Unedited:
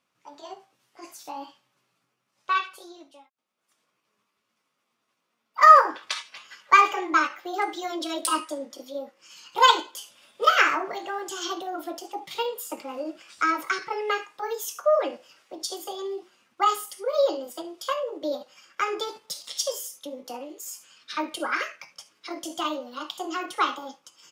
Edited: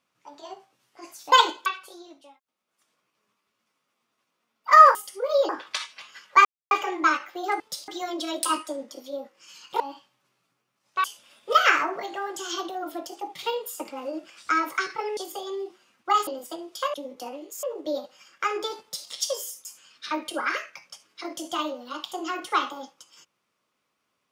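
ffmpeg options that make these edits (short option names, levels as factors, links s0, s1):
-filter_complex "[0:a]asplit=15[s0][s1][s2][s3][s4][s5][s6][s7][s8][s9][s10][s11][s12][s13][s14];[s0]atrim=end=1.322[s15];[s1]atrim=start=9.618:end=9.962[s16];[s2]atrim=start=2.558:end=5.852[s17];[s3]atrim=start=16.788:end=17.332[s18];[s4]atrim=start=5.848:end=6.81,asetpts=PTS-STARTPTS,afade=t=out:st=0.958:d=0.004:c=hsin,apad=pad_dur=0.26[s19];[s5]atrim=start=6.81:end=7.702,asetpts=PTS-STARTPTS,afade=t=in:d=0.004:c=hsin[s20];[s6]atrim=start=19.178:end=19.462[s21];[s7]atrim=start=7.698:end=9.622[s22];[s8]atrim=start=1.318:end=2.562[s23];[s9]atrim=start=9.958:end=14.092[s24];[s10]atrim=start=15.688:end=16.792[s25];[s11]atrim=start=17.328:end=18.002[s26];[s12]atrim=start=20.018:end=20.712[s27];[s13]atrim=start=17.998:end=20.022[s28];[s14]atrim=start=20.708[s29];[s15][s16]acrossfade=d=0.004:c1=hsin:c2=hsin[s30];[s30][s17]acrossfade=d=0.004:c1=hsin:c2=hsin[s31];[s31][s18]acrossfade=d=0.004:c1=hsin:c2=hsin[s32];[s19][s20]concat=n=2:v=0:a=1[s33];[s32][s33]acrossfade=d=0.004:c1=hsin:c2=hsin[s34];[s34][s21]acrossfade=d=0.004:c1=hsin:c2=hsin[s35];[s35][s22]acrossfade=d=0.004:c1=hsin:c2=hsin[s36];[s36][s23]acrossfade=d=0.004:c1=hsin:c2=hsin[s37];[s37][s24]acrossfade=d=0.004:c1=hsin:c2=hsin[s38];[s38][s25]acrossfade=d=0.004:c1=hsin:c2=hsin[s39];[s39][s26]acrossfade=d=0.004:c1=hsin:c2=hsin[s40];[s40][s27]acrossfade=d=0.004:c1=hsin:c2=hsin[s41];[s41][s28]acrossfade=d=0.004:c1=hsin:c2=hsin[s42];[s42][s29]acrossfade=d=0.004:c1=hsin:c2=hsin"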